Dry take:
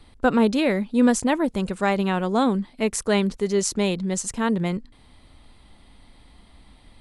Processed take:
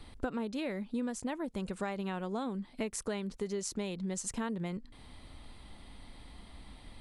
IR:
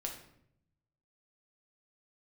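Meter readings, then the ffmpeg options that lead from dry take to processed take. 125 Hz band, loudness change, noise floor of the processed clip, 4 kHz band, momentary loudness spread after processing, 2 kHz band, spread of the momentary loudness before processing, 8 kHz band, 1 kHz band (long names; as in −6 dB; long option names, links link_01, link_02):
−13.0 dB, −14.5 dB, −54 dBFS, −14.5 dB, 18 LU, −15.5 dB, 6 LU, −12.0 dB, −16.0 dB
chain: -af "acompressor=threshold=-33dB:ratio=10"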